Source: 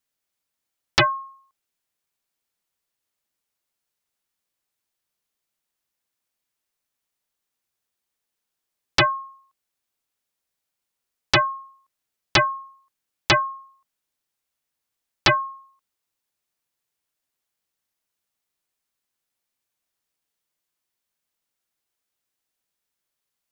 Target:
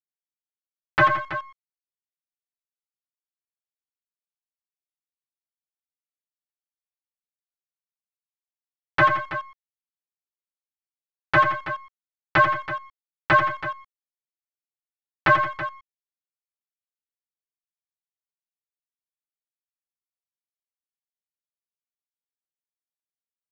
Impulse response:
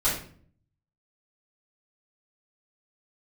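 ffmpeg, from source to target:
-filter_complex "[0:a]highpass=52,equalizer=frequency=220:width=6.7:gain=-13.5,aecho=1:1:6.6:0.44,asoftclip=type=tanh:threshold=-18.5dB,acrusher=bits=4:mix=0:aa=0.000001,aeval=exprs='0.133*(cos(1*acos(clip(val(0)/0.133,-1,1)))-cos(1*PI/2))+0.0473*(cos(3*acos(clip(val(0)/0.133,-1,1)))-cos(3*PI/2))+0.0106*(cos(4*acos(clip(val(0)/0.133,-1,1)))-cos(4*PI/2))':channel_layout=same,lowpass=frequency=1600:width_type=q:width=2.1,asplit=2[link_01][link_02];[link_02]aecho=0:1:86|169|327:0.355|0.168|0.237[link_03];[link_01][link_03]amix=inputs=2:normalize=0"

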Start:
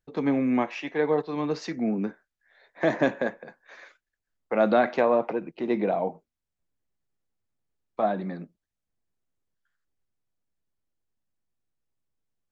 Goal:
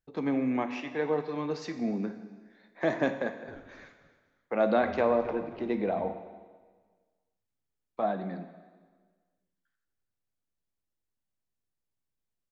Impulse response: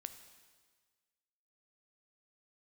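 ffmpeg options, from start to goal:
-filter_complex "[0:a]asplit=3[link_01][link_02][link_03];[link_01]afade=type=out:start_time=3.47:duration=0.02[link_04];[link_02]asplit=4[link_05][link_06][link_07][link_08];[link_06]adelay=266,afreqshift=-130,volume=-16.5dB[link_09];[link_07]adelay=532,afreqshift=-260,volume=-25.9dB[link_10];[link_08]adelay=798,afreqshift=-390,volume=-35.2dB[link_11];[link_05][link_09][link_10][link_11]amix=inputs=4:normalize=0,afade=type=in:start_time=3.47:duration=0.02,afade=type=out:start_time=6.09:duration=0.02[link_12];[link_03]afade=type=in:start_time=6.09:duration=0.02[link_13];[link_04][link_12][link_13]amix=inputs=3:normalize=0[link_14];[1:a]atrim=start_sample=2205[link_15];[link_14][link_15]afir=irnorm=-1:irlink=0"

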